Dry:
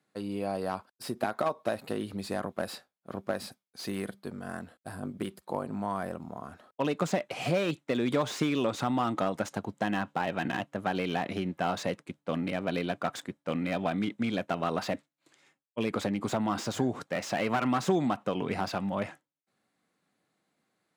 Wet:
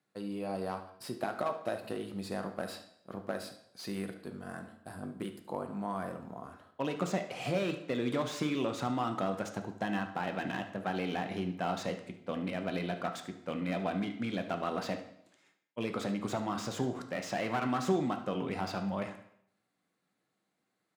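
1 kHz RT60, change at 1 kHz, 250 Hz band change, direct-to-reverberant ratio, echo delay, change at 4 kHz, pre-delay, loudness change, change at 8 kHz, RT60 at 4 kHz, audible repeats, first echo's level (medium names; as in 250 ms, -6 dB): 0.70 s, -4.0 dB, -3.5 dB, 6.0 dB, 73 ms, -4.0 dB, 5 ms, -4.0 dB, -4.5 dB, 0.65 s, 1, -15.0 dB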